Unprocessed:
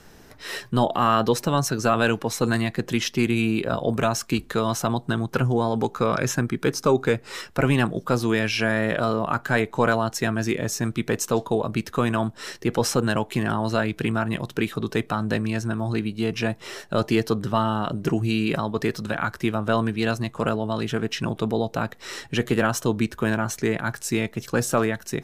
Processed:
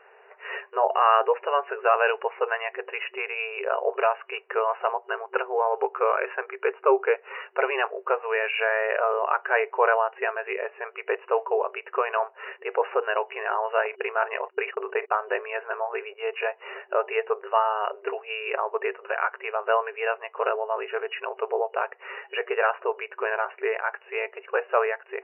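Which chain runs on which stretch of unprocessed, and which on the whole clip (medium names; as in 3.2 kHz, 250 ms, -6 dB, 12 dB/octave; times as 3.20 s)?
13.85–16.14 s: low-pass 3.1 kHz + gate -35 dBFS, range -51 dB + level flattener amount 50%
whole clip: FFT band-pass 380–2900 Hz; peaking EQ 880 Hz +5.5 dB 0.49 oct; band-stop 850 Hz, Q 15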